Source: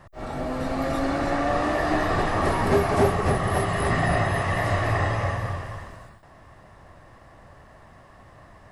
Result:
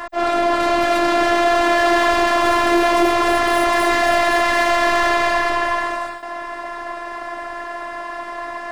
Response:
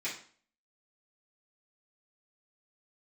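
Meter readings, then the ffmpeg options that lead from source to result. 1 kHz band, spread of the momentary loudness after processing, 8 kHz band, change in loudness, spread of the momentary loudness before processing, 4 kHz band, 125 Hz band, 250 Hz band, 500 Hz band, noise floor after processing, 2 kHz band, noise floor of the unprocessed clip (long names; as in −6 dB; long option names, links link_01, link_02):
+10.0 dB, 14 LU, +9.5 dB, +8.0 dB, 10 LU, +13.5 dB, −15.5 dB, +6.0 dB, +8.0 dB, −30 dBFS, +10.5 dB, −51 dBFS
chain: -filter_complex "[0:a]asplit=2[link_01][link_02];[link_02]highpass=frequency=720:poles=1,volume=32dB,asoftclip=type=tanh:threshold=-9dB[link_03];[link_01][link_03]amix=inputs=2:normalize=0,lowpass=frequency=2800:poles=1,volume=-6dB,afftfilt=real='hypot(re,im)*cos(PI*b)':imag='0':win_size=512:overlap=0.75,volume=3dB"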